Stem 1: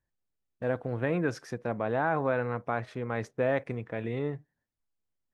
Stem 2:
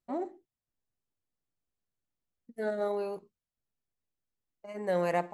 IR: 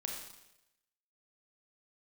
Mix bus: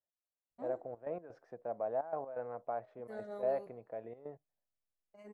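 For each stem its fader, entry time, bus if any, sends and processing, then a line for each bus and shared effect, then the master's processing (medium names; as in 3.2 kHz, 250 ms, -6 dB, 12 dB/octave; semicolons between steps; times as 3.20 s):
-2.5 dB, 0.00 s, no send, band-pass filter 650 Hz, Q 3.5; trance gate "x.xxxxxx." 127 bpm -12 dB
-15.5 dB, 0.50 s, send -13 dB, none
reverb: on, RT60 0.90 s, pre-delay 28 ms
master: bass shelf 170 Hz +7 dB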